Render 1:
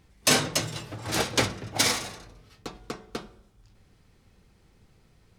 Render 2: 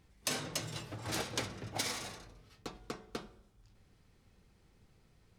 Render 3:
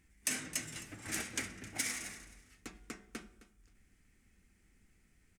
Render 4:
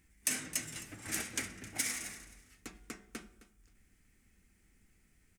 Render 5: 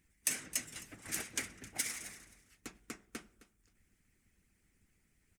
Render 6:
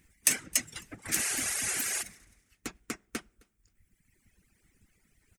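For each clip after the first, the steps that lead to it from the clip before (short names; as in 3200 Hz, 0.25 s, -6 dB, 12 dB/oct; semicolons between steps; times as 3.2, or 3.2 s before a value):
compressor 6:1, threshold -27 dBFS, peak gain reduction 10.5 dB; gain -6 dB
graphic EQ 125/250/500/1000/2000/4000/8000 Hz -11/+4/-10/-10/+8/-11/+7 dB; feedback echo 0.263 s, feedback 21%, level -17 dB
high shelf 11000 Hz +7.5 dB
harmonic-percussive split harmonic -12 dB
spectral repair 1.21–2, 350–12000 Hz before; reverb removal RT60 1.6 s; gain +9 dB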